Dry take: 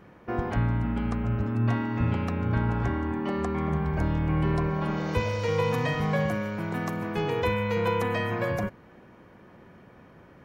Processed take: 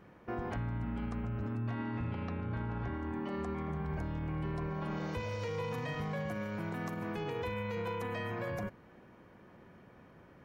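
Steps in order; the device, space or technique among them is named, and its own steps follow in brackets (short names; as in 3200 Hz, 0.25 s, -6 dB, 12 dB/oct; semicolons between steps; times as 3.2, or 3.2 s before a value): 1.7–2.94 LPF 5000 Hz 24 dB/oct; clipper into limiter (hard clip -17 dBFS, distortion -30 dB; limiter -24 dBFS, peak gain reduction 7 dB); gain -5.5 dB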